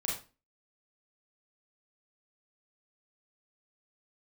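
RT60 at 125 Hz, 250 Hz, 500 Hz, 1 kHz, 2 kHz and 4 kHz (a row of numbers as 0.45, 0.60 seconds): 0.35, 0.40, 0.35, 0.30, 0.30, 0.25 seconds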